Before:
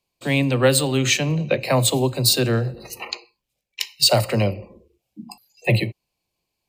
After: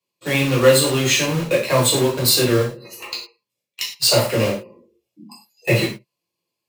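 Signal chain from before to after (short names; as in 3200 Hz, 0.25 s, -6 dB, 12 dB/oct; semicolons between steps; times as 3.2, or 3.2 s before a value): HPF 160 Hz 12 dB/oct; notch comb 760 Hz; in parallel at -3 dB: bit-crush 4-bit; on the sum: non-linear reverb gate 0.14 s falling, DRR -5.5 dB; gain -7 dB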